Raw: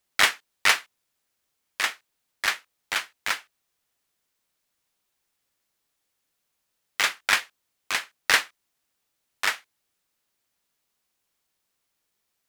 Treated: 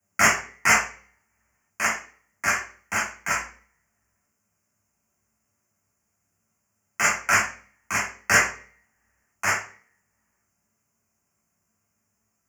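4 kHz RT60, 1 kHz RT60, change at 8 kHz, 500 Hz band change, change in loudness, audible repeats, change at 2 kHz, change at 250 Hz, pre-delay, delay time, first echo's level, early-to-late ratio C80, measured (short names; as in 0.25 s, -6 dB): 0.40 s, 0.40 s, +6.0 dB, +6.5 dB, +2.0 dB, none, +3.0 dB, +12.0 dB, 3 ms, none, none, 12.0 dB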